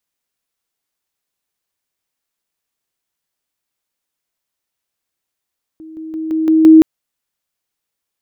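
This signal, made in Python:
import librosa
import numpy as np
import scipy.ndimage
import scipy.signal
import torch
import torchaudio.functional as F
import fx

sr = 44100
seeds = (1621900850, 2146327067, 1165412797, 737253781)

y = fx.level_ladder(sr, hz=318.0, from_db=-31.5, step_db=6.0, steps=6, dwell_s=0.17, gap_s=0.0)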